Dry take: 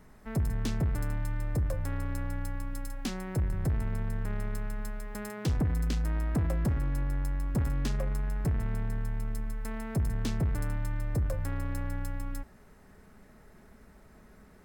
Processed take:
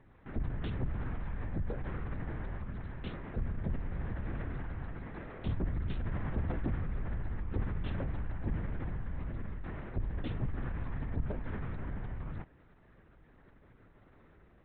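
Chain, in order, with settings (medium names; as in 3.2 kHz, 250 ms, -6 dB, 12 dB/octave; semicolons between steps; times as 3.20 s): LPC vocoder at 8 kHz whisper; trim -5.5 dB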